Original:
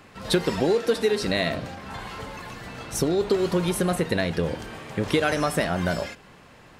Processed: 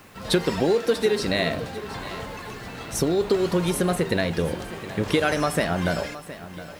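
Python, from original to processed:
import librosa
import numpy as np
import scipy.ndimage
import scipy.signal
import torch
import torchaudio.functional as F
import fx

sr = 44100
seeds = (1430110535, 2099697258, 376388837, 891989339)

p1 = fx.quant_dither(x, sr, seeds[0], bits=8, dither='triangular')
p2 = x + (p1 * librosa.db_to_amplitude(-8.5))
p3 = fx.echo_feedback(p2, sr, ms=716, feedback_pct=39, wet_db=-15.0)
y = p3 * librosa.db_to_amplitude(-2.0)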